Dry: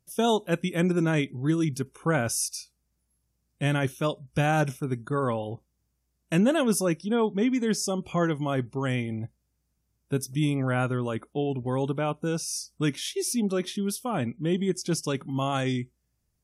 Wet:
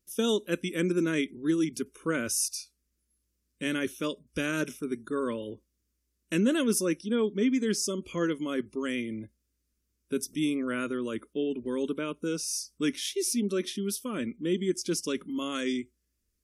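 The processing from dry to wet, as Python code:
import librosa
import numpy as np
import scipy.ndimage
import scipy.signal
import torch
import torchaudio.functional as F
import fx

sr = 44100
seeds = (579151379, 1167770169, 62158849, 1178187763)

y = fx.wow_flutter(x, sr, seeds[0], rate_hz=2.1, depth_cents=19.0)
y = fx.fixed_phaser(y, sr, hz=320.0, stages=4)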